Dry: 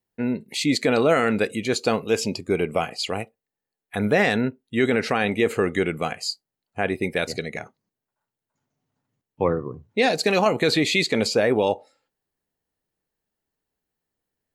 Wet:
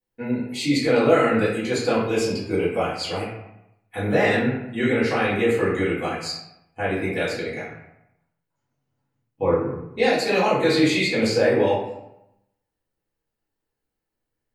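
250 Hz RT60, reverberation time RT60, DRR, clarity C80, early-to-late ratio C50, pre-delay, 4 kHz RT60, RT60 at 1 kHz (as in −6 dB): 0.95 s, 0.85 s, −10.0 dB, 5.5 dB, 2.5 dB, 3 ms, 0.55 s, 0.85 s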